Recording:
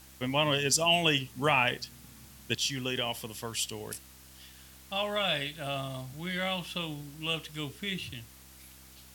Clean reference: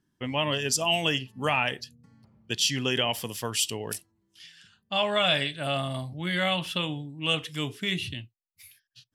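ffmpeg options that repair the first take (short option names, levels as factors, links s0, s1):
-af "bandreject=f=65.5:t=h:w=4,bandreject=f=131:t=h:w=4,bandreject=f=196.5:t=h:w=4,bandreject=f=262:t=h:w=4,bandreject=f=327.5:t=h:w=4,afwtdn=0.002,asetnsamples=n=441:p=0,asendcmd='2.55 volume volume 6dB',volume=1"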